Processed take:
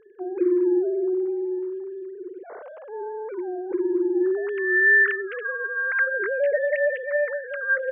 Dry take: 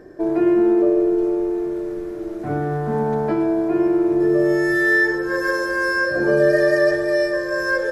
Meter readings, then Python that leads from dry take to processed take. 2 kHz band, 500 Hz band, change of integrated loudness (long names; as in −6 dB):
−0.5 dB, −5.5 dB, −4.0 dB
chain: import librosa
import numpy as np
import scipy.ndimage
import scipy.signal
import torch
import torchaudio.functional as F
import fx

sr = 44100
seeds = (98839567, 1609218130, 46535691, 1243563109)

y = fx.sine_speech(x, sr)
y = F.gain(torch.from_numpy(y), -5.5).numpy()